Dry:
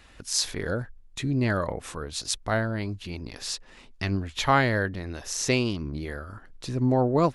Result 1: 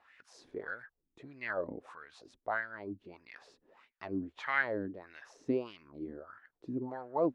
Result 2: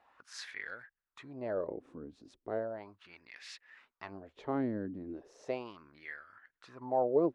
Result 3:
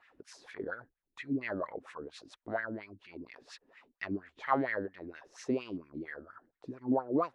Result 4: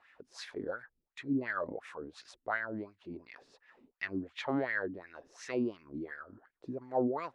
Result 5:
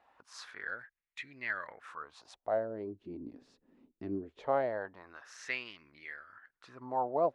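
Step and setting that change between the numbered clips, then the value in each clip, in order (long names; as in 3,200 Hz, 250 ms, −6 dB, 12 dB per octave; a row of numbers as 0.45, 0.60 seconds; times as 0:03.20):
LFO wah, speed: 1.6, 0.36, 4.3, 2.8, 0.21 Hertz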